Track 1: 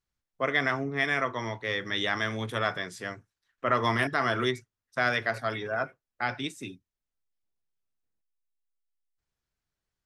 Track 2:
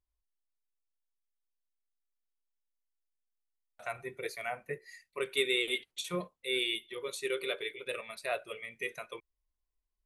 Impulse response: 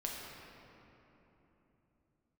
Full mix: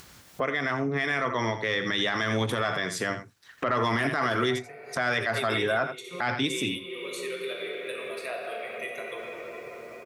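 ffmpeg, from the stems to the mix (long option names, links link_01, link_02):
-filter_complex "[0:a]highpass=96,dynaudnorm=framelen=400:gausssize=5:maxgain=11dB,volume=-2dB,asplit=3[link_01][link_02][link_03];[link_02]volume=-14dB[link_04];[1:a]highpass=160,volume=-6.5dB,asplit=2[link_05][link_06];[link_06]volume=-6.5dB[link_07];[link_03]apad=whole_len=443358[link_08];[link_05][link_08]sidechaingate=range=-33dB:threshold=-39dB:ratio=16:detection=peak[link_09];[2:a]atrim=start_sample=2205[link_10];[link_07][link_10]afir=irnorm=-1:irlink=0[link_11];[link_04]aecho=0:1:84:1[link_12];[link_01][link_09][link_11][link_12]amix=inputs=4:normalize=0,acompressor=mode=upward:threshold=-21dB:ratio=2.5,asoftclip=type=tanh:threshold=-6.5dB,alimiter=limit=-17dB:level=0:latency=1:release=44"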